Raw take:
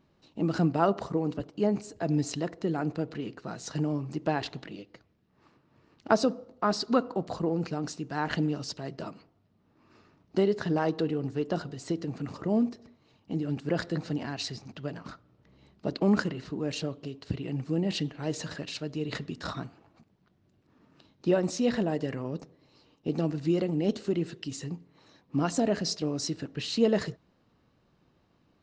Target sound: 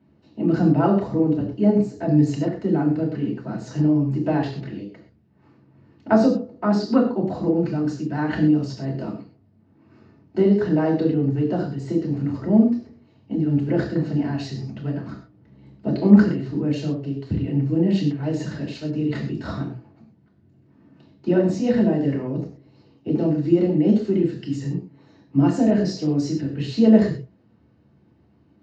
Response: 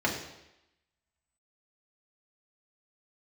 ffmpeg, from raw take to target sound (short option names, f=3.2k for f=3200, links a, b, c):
-filter_complex "[0:a]lowshelf=f=390:g=8.5[a];[1:a]atrim=start_sample=2205,atrim=end_sample=6174[b];[a][b]afir=irnorm=-1:irlink=0,volume=-9.5dB"